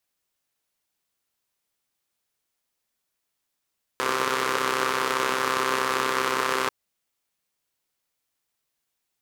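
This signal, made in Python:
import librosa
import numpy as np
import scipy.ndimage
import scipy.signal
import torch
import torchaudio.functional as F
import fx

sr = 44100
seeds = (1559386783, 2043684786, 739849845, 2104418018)

y = fx.engine_four(sr, seeds[0], length_s=2.69, rpm=3900, resonances_hz=(450.0, 1100.0))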